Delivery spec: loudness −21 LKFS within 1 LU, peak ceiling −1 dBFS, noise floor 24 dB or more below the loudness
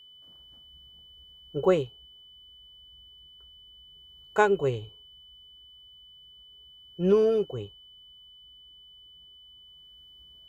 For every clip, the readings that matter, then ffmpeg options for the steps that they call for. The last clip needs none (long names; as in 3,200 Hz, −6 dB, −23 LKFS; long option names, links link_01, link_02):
interfering tone 3,000 Hz; level of the tone −50 dBFS; integrated loudness −26.0 LKFS; sample peak −8.5 dBFS; target loudness −21.0 LKFS
→ -af "bandreject=frequency=3000:width=30"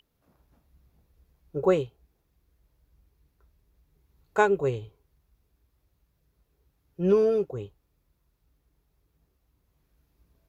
interfering tone none found; integrated loudness −26.5 LKFS; sample peak −8.5 dBFS; target loudness −21.0 LKFS
→ -af "volume=5.5dB"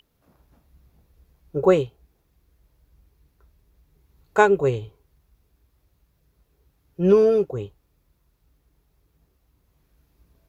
integrated loudness −21.0 LKFS; sample peak −3.0 dBFS; background noise floor −68 dBFS